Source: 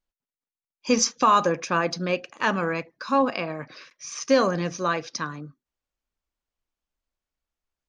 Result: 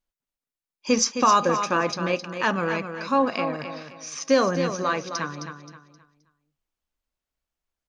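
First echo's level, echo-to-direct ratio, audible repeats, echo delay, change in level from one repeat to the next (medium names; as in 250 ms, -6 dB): -8.5 dB, -8.0 dB, 3, 263 ms, -10.0 dB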